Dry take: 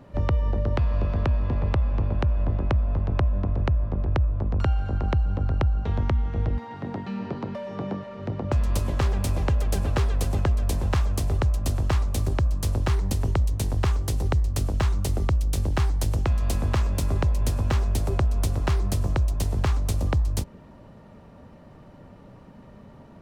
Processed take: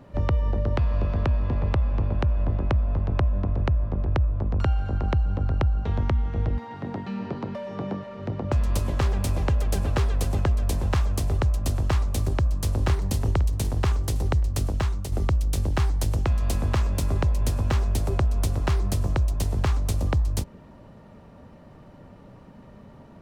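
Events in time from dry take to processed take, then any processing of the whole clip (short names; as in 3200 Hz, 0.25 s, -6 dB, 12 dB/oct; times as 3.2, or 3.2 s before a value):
12.27–12.78 echo throw 0.51 s, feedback 50%, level -7.5 dB
14.69–15.12 fade out, to -7.5 dB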